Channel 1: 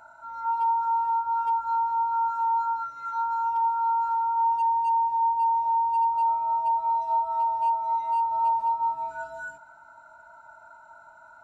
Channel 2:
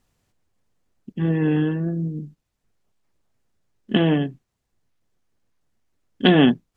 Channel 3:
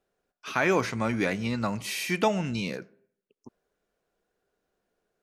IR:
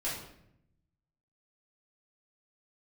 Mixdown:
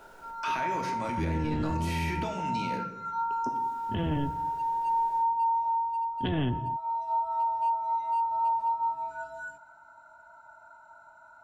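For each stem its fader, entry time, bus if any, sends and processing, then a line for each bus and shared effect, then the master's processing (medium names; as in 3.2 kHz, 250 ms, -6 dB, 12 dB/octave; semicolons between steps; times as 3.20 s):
-3.0 dB, 0.00 s, no send, auto duck -7 dB, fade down 0.55 s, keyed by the second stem
-9.0 dB, 0.00 s, send -20 dB, octave divider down 1 oct, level +2 dB
-11.0 dB, 0.00 s, send -4 dB, three bands compressed up and down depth 100%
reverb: on, RT60 0.75 s, pre-delay 3 ms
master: peak limiter -21.5 dBFS, peak gain reduction 11 dB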